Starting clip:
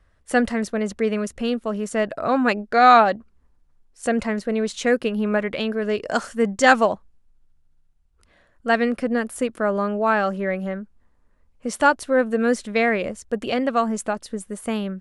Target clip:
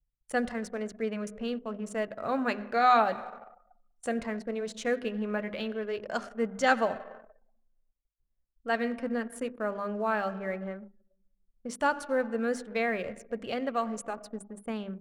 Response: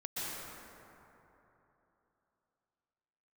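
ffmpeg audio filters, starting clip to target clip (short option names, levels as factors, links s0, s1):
-filter_complex "[0:a]asplit=2[s0][s1];[1:a]atrim=start_sample=2205,asetrate=83790,aresample=44100[s2];[s1][s2]afir=irnorm=-1:irlink=0,volume=0.251[s3];[s0][s3]amix=inputs=2:normalize=0,acrusher=bits=8:mix=0:aa=0.000001,flanger=delay=1.4:depth=7.9:regen=-75:speed=0.15:shape=sinusoidal,bandreject=f=50:t=h:w=6,bandreject=f=100:t=h:w=6,bandreject=f=150:t=h:w=6,bandreject=f=200:t=h:w=6,bandreject=f=250:t=h:w=6,bandreject=f=300:t=h:w=6,bandreject=f=350:t=h:w=6,bandreject=f=400:t=h:w=6,asettb=1/sr,asplit=3[s4][s5][s6];[s4]atrim=end=5.294[s7];[s5]atrim=start=5.29:end=6.87,asetpts=PTS-STARTPTS,afade=t=in:d=0.004:c=qsin,afade=t=out:st=1.576:d=0.004:c=qsin,equalizer=f=8200:t=o:w=0.4:g=-5.5[s8];[s6]atrim=start=6.866[s9];[s7][s8]acrossfade=d=0.004:c1=hsin:c2=qsin[s10];[s10][s9]acrossfade=d=0.004:c1=qsin:c2=hsin,anlmdn=0.631,volume=0.501"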